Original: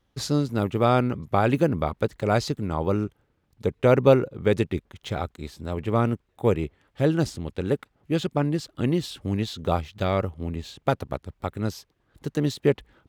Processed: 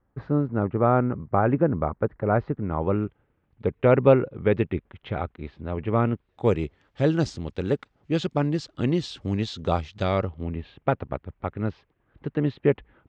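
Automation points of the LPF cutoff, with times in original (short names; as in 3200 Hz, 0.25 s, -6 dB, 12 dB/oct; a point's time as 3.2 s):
LPF 24 dB/oct
2.47 s 1700 Hz
3.03 s 2800 Hz
6.05 s 2800 Hz
6.47 s 6700 Hz
10.05 s 6700 Hz
10.61 s 2700 Hz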